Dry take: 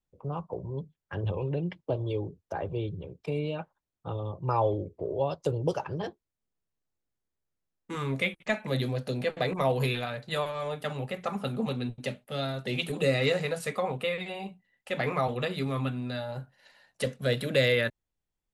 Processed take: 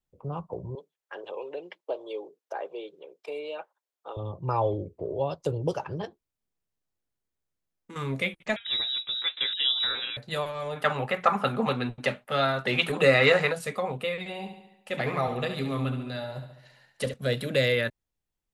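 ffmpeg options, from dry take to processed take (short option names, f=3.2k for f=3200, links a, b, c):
-filter_complex "[0:a]asettb=1/sr,asplit=3[a][b][c];[a]atrim=end=0.754[d];[b]atrim=start=0.75:end=4.17,asetpts=PTS-STARTPTS,afade=t=in:d=0.004:c=qsin,afade=t=out:st=3.416:d=0.004:c=qsin,highpass=f=410:w=0.5412,highpass=f=410:w=1.3066[e];[c]atrim=start=4.166[f];[d][e]acrossfade=d=0.004:c1=hsin:c2=qsin[g];[g][f]acrossfade=d=0.004:c1=qsin:c2=hsin,asettb=1/sr,asplit=3[h][i][j];[h]atrim=end=6.054[k];[i]atrim=start=6.05:end=7.96,asetpts=PTS-STARTPTS,afade=t=in:d=0.004:c=qsin,afade=t=out:st=1.906:d=0.004:c=qsin,acompressor=threshold=-41dB:ratio=6:attack=3.2:release=140:knee=1:detection=peak[l];[j]atrim=start=7.956[m];[k][l]acrossfade=d=0.004:c1=hsin:c2=qsin[n];[n][m]acrossfade=d=0.004:c1=qsin:c2=hsin,asettb=1/sr,asplit=3[o][p][q];[o]atrim=end=8.564[r];[p]atrim=start=8.56:end=10.17,asetpts=PTS-STARTPTS,afade=t=in:d=0.004:c=qsin,afade=t=out:st=1.606:d=0.004:c=qsin,lowpass=f=3.4k:t=q:w=0.5098,lowpass=f=3.4k:t=q:w=0.6013,lowpass=f=3.4k:t=q:w=0.9,lowpass=f=3.4k:t=q:w=2.563,afreqshift=-4000[s];[q]atrim=start=10.166[t];[r][s]acrossfade=d=0.004:c1=hsin:c2=qsin[u];[u][t]acrossfade=d=0.004:c1=qsin:c2=hsin,asplit=3[v][w][x];[v]afade=t=out:st=10.75:d=0.02[y];[w]equalizer=f=1.3k:t=o:w=2.3:g=14,afade=t=in:st=10.75:d=0.02,afade=t=out:st=13.51:d=0.02[z];[x]afade=t=in:st=13.51:d=0.02[aa];[y][z][aa]amix=inputs=3:normalize=0,asettb=1/sr,asplit=3[ab][ac][ad];[ab]atrim=end=14.194[ae];[ac]atrim=start=14.19:end=17.14,asetpts=PTS-STARTPTS,afade=t=in:d=0.004:c=qsin,afade=t=out:st=2.946:d=0.004:c=qsin,aecho=1:1:70|140|210|280|350|420|490:0.355|0.206|0.119|0.0692|0.0402|0.0233|0.0135,atrim=end_sample=130095[af];[ad]atrim=start=17.136[ag];[ae][af]acrossfade=d=0.004:c1=hsin:c2=qsin[ah];[ah][ag]acrossfade=d=0.004:c1=qsin:c2=hsin"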